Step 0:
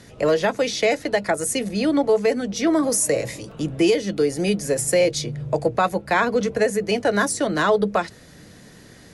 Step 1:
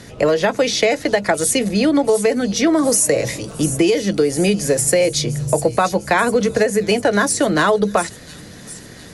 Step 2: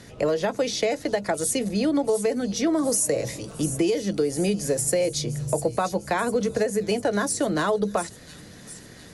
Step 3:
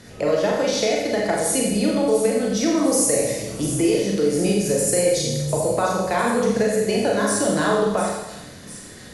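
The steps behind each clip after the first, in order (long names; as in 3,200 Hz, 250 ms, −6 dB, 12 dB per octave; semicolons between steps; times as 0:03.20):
downward compressor, threshold −19 dBFS, peak gain reduction 6 dB; delay with a high-pass on its return 701 ms, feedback 53%, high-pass 5,200 Hz, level −9 dB; level +7.5 dB
dynamic equaliser 2,100 Hz, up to −5 dB, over −32 dBFS, Q 0.81; level −7 dB
convolution reverb RT60 1.0 s, pre-delay 30 ms, DRR −2.5 dB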